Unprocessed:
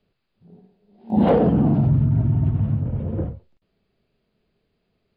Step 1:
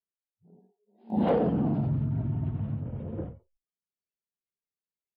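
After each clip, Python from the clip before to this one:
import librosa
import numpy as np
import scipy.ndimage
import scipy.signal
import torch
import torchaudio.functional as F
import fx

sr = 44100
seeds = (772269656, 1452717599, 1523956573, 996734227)

y = fx.noise_reduce_blind(x, sr, reduce_db=29)
y = fx.low_shelf(y, sr, hz=110.0, db=-8.5)
y = y * librosa.db_to_amplitude(-7.0)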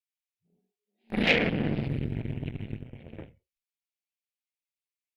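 y = fx.cheby_harmonics(x, sr, harmonics=(4, 7), levels_db=(-14, -19), full_scale_db=-15.0)
y = fx.high_shelf_res(y, sr, hz=1600.0, db=12.5, q=3.0)
y = y * librosa.db_to_amplitude(-2.0)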